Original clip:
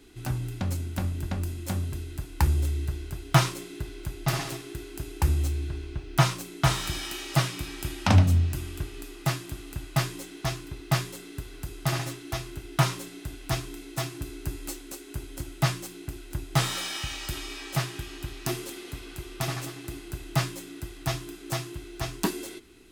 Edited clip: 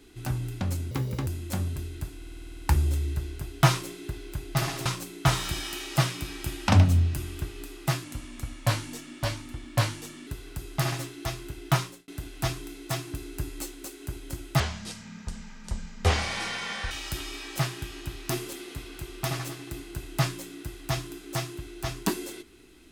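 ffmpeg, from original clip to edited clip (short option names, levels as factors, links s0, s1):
-filter_complex "[0:a]asplit=18[s0][s1][s2][s3][s4][s5][s6][s7][s8][s9][s10][s11][s12][s13][s14][s15][s16][s17];[s0]atrim=end=0.914[s18];[s1]atrim=start=0.91:end=1.43,asetpts=PTS-STARTPTS,asetrate=64386,aresample=44100[s19];[s2]atrim=start=1.426:end=2.382[s20];[s3]atrim=start=2.328:end=2.382[s21];[s4]atrim=start=2.328:end=2.382[s22];[s5]atrim=start=2.328:end=2.382[s23];[s6]atrim=start=2.328:end=2.382[s24];[s7]atrim=start=2.328:end=2.382[s25];[s8]atrim=start=2.328:end=2.382[s26];[s9]atrim=start=2.328:end=2.382[s27];[s10]atrim=start=2.328:end=2.382[s28];[s11]atrim=start=2.328:end=4.572[s29];[s12]atrim=start=6.238:end=9.424[s30];[s13]atrim=start=9.42:end=11.34,asetpts=PTS-STARTPTS,asetrate=37926,aresample=44100[s31];[s14]atrim=start=11.336:end=13.15,asetpts=PTS-STARTPTS,afade=t=out:st=1.434:d=0.38[s32];[s15]atrim=start=13.15:end=15.674,asetpts=PTS-STARTPTS,afade=t=in:d=0.004:c=hsin[s33];[s16]atrim=start=15.67:end=17.08,asetpts=PTS-STARTPTS,asetrate=26901,aresample=44100,atrim=end_sample=101936,asetpts=PTS-STARTPTS[s34];[s17]atrim=start=17.076[s35];[s18][s19]acrossfade=d=0.004:c1=hsin:c2=hsin[s36];[s36][s20]acrossfade=d=0.004:c1=hsin:c2=hsin[s37];[s37][s21]acrossfade=d=0.004:c1=hsin:c2=hsin[s38];[s38][s22]acrossfade=d=0.004:c1=hsin:c2=hsin[s39];[s39][s23]acrossfade=d=0.004:c1=hsin:c2=hsin[s40];[s40][s24]acrossfade=d=0.004:c1=hsin:c2=hsin[s41];[s41][s25]acrossfade=d=0.004:c1=hsin:c2=hsin[s42];[s42][s26]acrossfade=d=0.004:c1=hsin:c2=hsin[s43];[s43][s27]acrossfade=d=0.004:c1=hsin:c2=hsin[s44];[s44][s28]acrossfade=d=0.004:c1=hsin:c2=hsin[s45];[s45][s29]acrossfade=d=0.004:c1=hsin:c2=hsin[s46];[s46][s30]acrossfade=d=0.004:c1=hsin:c2=hsin[s47];[s47][s31]acrossfade=d=0.004:c1=hsin:c2=hsin[s48];[s32][s33]concat=n=2:v=0:a=1[s49];[s48][s49]acrossfade=d=0.004:c1=hsin:c2=hsin[s50];[s50][s34]acrossfade=d=0.004:c1=hsin:c2=hsin[s51];[s51][s35]acrossfade=d=0.004:c1=hsin:c2=hsin"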